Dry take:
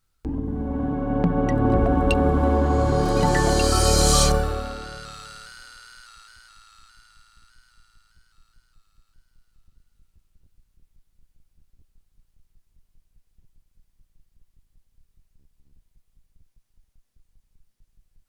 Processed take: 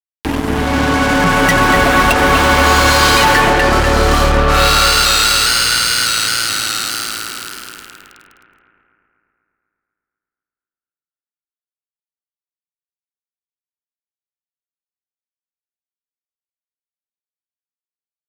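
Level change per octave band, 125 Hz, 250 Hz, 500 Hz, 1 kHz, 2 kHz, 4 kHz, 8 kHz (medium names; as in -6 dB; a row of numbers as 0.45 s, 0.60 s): +4.5 dB, +6.0 dB, +7.5 dB, +13.5 dB, +21.5 dB, +16.5 dB, +10.5 dB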